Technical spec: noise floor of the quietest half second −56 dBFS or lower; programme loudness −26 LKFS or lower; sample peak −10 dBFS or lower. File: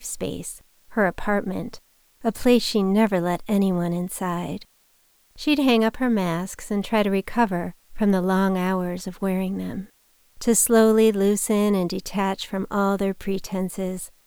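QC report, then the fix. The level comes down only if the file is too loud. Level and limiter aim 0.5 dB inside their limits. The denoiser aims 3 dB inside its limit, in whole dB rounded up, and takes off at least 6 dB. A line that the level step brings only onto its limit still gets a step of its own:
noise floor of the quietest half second −61 dBFS: in spec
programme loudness −23.0 LKFS: out of spec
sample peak −4.5 dBFS: out of spec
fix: level −3.5 dB
brickwall limiter −10.5 dBFS

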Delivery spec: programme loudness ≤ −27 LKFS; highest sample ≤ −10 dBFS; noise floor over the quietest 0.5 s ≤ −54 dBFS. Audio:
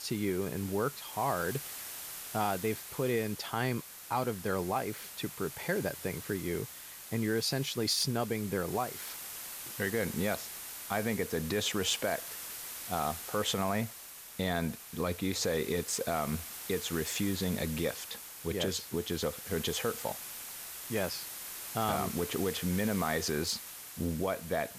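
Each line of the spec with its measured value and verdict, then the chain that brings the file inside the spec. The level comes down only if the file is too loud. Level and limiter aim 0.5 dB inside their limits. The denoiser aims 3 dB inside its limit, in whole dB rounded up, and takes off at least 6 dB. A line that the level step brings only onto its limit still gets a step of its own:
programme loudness −34.0 LKFS: in spec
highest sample −16.5 dBFS: in spec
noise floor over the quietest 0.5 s −48 dBFS: out of spec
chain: broadband denoise 9 dB, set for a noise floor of −48 dBFS

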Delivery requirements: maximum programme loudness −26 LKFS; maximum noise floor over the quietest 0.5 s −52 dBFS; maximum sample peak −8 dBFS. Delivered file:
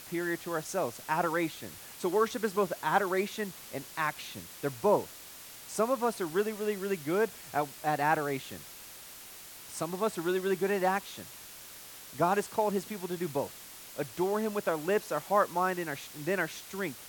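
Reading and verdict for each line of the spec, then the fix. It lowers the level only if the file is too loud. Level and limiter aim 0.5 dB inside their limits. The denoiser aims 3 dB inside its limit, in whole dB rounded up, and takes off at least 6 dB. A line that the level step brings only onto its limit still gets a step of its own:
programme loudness −31.5 LKFS: in spec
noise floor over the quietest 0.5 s −48 dBFS: out of spec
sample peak −11.5 dBFS: in spec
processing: broadband denoise 7 dB, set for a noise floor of −48 dBFS

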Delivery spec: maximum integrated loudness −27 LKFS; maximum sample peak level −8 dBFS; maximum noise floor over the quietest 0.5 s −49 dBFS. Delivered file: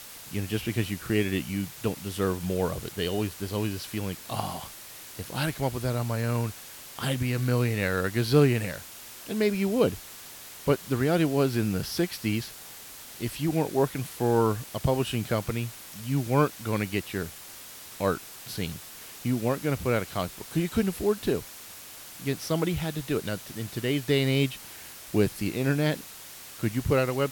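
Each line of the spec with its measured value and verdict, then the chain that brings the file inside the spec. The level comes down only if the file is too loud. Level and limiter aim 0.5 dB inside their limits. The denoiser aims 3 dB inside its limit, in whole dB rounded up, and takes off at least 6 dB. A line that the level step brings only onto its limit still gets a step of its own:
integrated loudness −28.5 LKFS: in spec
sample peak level −9.5 dBFS: in spec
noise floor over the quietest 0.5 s −45 dBFS: out of spec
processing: broadband denoise 7 dB, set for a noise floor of −45 dBFS

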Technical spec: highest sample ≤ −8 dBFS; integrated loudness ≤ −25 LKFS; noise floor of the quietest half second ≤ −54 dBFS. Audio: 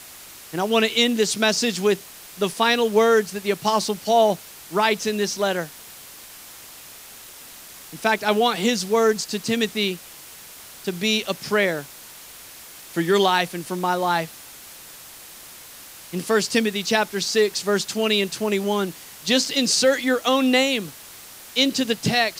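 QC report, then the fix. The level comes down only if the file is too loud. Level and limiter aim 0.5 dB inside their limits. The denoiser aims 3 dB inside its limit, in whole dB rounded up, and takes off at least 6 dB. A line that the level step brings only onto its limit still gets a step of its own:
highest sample −4.5 dBFS: out of spec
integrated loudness −21.5 LKFS: out of spec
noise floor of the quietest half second −42 dBFS: out of spec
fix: broadband denoise 11 dB, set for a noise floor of −42 dBFS
level −4 dB

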